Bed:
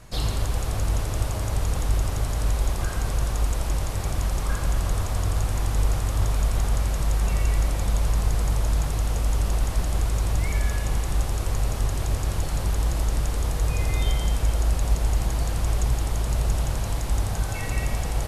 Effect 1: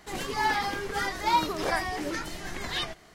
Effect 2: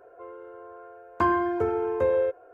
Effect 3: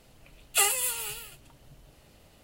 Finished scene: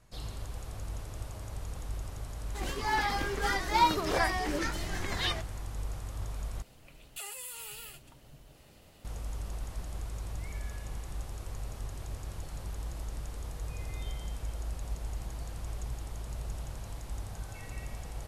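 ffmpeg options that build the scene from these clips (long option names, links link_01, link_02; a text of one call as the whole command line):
ffmpeg -i bed.wav -i cue0.wav -i cue1.wav -i cue2.wav -filter_complex "[0:a]volume=-15dB[link_01];[1:a]dynaudnorm=framelen=420:gausssize=3:maxgain=4dB[link_02];[3:a]acompressor=threshold=-39dB:ratio=6:attack=3.2:release=140:knee=1:detection=peak[link_03];[link_01]asplit=2[link_04][link_05];[link_04]atrim=end=6.624[link_06];[link_03]atrim=end=2.43,asetpts=PTS-STARTPTS,volume=-0.5dB[link_07];[link_05]atrim=start=9.046[link_08];[link_02]atrim=end=3.14,asetpts=PTS-STARTPTS,volume=-4.5dB,afade=type=in:duration=0.004:curve=hsin,afade=type=out:start_time=3.136:duration=0.004:curve=hsin,adelay=2480[link_09];[link_06][link_07]acrossfade=duration=0.004:curve1=hsin:curve2=hsin[link_10];[link_10][link_08]acrossfade=duration=0.004:curve1=hsin:curve2=hsin[link_11];[link_11][link_09]amix=inputs=2:normalize=0" out.wav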